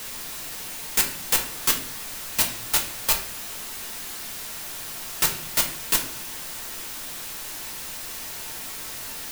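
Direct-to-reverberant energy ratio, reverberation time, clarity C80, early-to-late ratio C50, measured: 1.5 dB, 0.60 s, 12.5 dB, 9.0 dB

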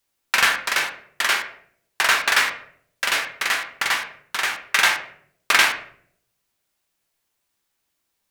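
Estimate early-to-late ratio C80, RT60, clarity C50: 13.5 dB, 0.60 s, 10.0 dB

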